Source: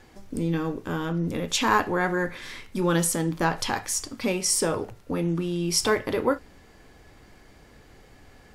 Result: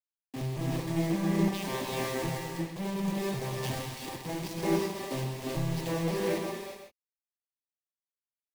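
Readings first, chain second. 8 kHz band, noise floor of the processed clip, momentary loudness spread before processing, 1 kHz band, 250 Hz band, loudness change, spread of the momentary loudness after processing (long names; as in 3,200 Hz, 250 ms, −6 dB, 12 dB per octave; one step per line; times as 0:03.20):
−15.0 dB, below −85 dBFS, 9 LU, −9.5 dB, −4.0 dB, −6.5 dB, 9 LU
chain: vocoder with an arpeggio as carrier major triad, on C3, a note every 554 ms
high-frequency loss of the air 210 metres
log-companded quantiser 2 bits
parametric band 1,400 Hz −12 dB 0.22 octaves
on a send: single-tap delay 133 ms −12 dB
on the sum: brickwall limiter −30 dBFS, peak gain reduction 9.5 dB
reverb whose tail is shaped and stops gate 410 ms rising, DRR −1 dB
multiband upward and downward expander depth 70%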